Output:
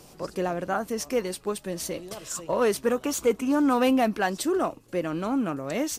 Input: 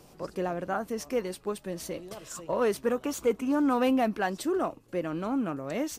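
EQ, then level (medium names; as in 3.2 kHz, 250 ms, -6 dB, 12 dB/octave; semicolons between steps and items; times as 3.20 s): peaking EQ 8.1 kHz +5 dB 2.5 oct; +3.0 dB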